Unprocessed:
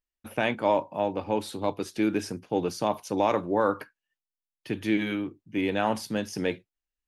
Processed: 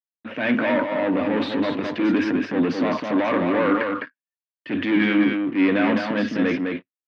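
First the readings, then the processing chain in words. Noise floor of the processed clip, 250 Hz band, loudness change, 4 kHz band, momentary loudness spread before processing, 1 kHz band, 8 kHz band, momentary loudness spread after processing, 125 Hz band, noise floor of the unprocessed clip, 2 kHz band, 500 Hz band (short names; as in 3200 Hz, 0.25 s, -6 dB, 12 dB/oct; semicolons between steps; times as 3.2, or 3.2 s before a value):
under -85 dBFS, +9.5 dB, +6.5 dB, +5.0 dB, 7 LU, +1.5 dB, n/a, 8 LU, +4.5 dB, under -85 dBFS, +9.5 dB, +4.0 dB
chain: gate with hold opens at -47 dBFS; limiter -16 dBFS, peak gain reduction 5.5 dB; sample leveller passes 3; transient shaper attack -6 dB, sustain +6 dB; speaker cabinet 210–3100 Hz, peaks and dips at 260 Hz +10 dB, 400 Hz -5 dB, 820 Hz -9 dB, 1800 Hz +5 dB; on a send: echo 0.208 s -4.5 dB; on the sum: gain +1.5 dB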